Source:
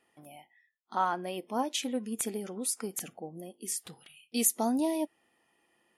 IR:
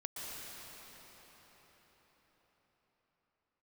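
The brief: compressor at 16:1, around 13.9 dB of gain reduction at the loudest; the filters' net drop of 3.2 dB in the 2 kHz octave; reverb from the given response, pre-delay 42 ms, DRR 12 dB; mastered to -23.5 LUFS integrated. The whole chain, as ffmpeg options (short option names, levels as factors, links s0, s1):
-filter_complex "[0:a]equalizer=f=2000:t=o:g=-5,acompressor=threshold=0.0158:ratio=16,asplit=2[s0][s1];[1:a]atrim=start_sample=2205,adelay=42[s2];[s1][s2]afir=irnorm=-1:irlink=0,volume=0.224[s3];[s0][s3]amix=inputs=2:normalize=0,volume=7.5"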